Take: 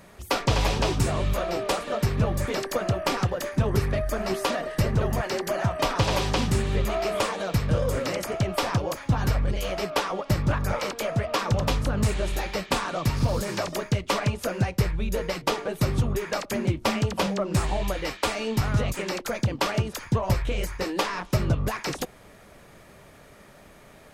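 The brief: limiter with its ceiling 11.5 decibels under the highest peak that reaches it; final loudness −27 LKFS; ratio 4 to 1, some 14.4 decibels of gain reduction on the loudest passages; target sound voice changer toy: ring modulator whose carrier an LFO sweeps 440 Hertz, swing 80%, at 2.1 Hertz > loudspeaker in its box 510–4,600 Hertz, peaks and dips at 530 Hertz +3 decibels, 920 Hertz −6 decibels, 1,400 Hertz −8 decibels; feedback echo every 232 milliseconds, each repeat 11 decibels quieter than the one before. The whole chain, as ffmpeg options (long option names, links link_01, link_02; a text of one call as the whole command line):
ffmpeg -i in.wav -af "acompressor=threshold=-36dB:ratio=4,alimiter=level_in=7dB:limit=-24dB:level=0:latency=1,volume=-7dB,aecho=1:1:232|464|696:0.282|0.0789|0.0221,aeval=exprs='val(0)*sin(2*PI*440*n/s+440*0.8/2.1*sin(2*PI*2.1*n/s))':channel_layout=same,highpass=510,equalizer=frequency=530:width_type=q:width=4:gain=3,equalizer=frequency=920:width_type=q:width=4:gain=-6,equalizer=frequency=1400:width_type=q:width=4:gain=-8,lowpass=frequency=4600:width=0.5412,lowpass=frequency=4600:width=1.3066,volume=20dB" out.wav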